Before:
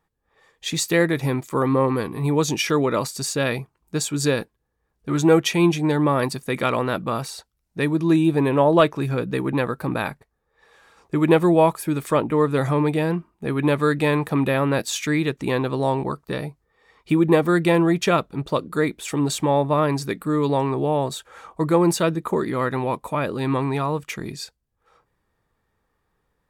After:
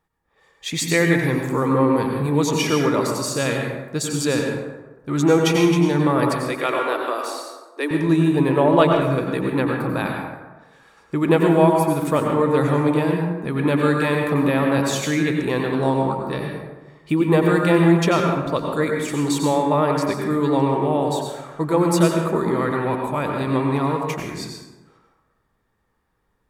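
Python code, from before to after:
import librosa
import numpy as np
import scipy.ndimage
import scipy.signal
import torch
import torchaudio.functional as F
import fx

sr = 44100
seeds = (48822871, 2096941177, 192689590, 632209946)

y = fx.peak_eq(x, sr, hz=2200.0, db=8.0, octaves=0.3, at=(0.71, 1.19))
y = fx.steep_highpass(y, sr, hz=280.0, slope=72, at=(6.35, 7.91))
y = fx.rev_plate(y, sr, seeds[0], rt60_s=1.2, hf_ratio=0.5, predelay_ms=80, drr_db=1.0)
y = F.gain(torch.from_numpy(y), -1.0).numpy()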